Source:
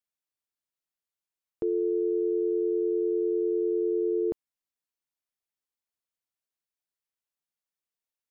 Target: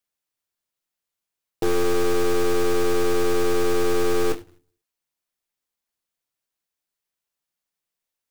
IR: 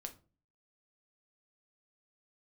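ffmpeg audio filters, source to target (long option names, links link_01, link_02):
-filter_complex "[0:a]aeval=exprs='(tanh(31.6*val(0)+0.65)-tanh(0.65))/31.6':channel_layout=same,asplit=2[link_01][link_02];[1:a]atrim=start_sample=2205[link_03];[link_02][link_03]afir=irnorm=-1:irlink=0,volume=4.5dB[link_04];[link_01][link_04]amix=inputs=2:normalize=0,acrusher=bits=2:mode=log:mix=0:aa=0.000001,volume=4dB"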